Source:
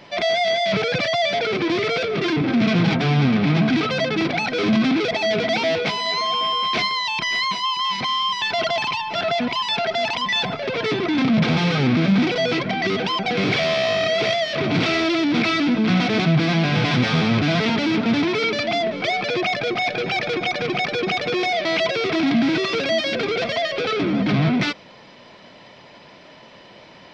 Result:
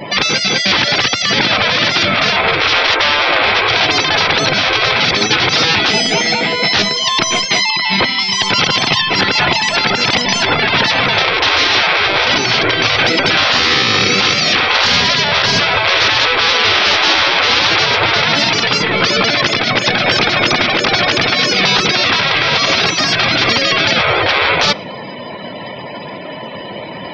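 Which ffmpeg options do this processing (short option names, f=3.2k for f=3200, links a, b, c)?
-filter_complex "[0:a]asettb=1/sr,asplit=3[a][b][c];[a]atrim=end=7.704[d];[b]atrim=start=7.7:end=8.19,asetpts=PTS-STARTPTS,afade=t=in:d=0.004:c=qsin,afade=t=out:st=0.486:d=0.004:c=qsin,lowpass=3.7k[e];[c]atrim=start=8.186[f];[d][e]acrossfade=d=0.004:c1=hsin:c2=qsin[g];[g][f]acrossfade=d=0.004:c1=qsin:c2=hsin,afftfilt=real='re*lt(hypot(re,im),0.158)':imag='im*lt(hypot(re,im),0.158)':win_size=1024:overlap=0.75,afftdn=nr=32:nf=-47,alimiter=level_in=21dB:limit=-1dB:release=50:level=0:latency=1,volume=-1dB"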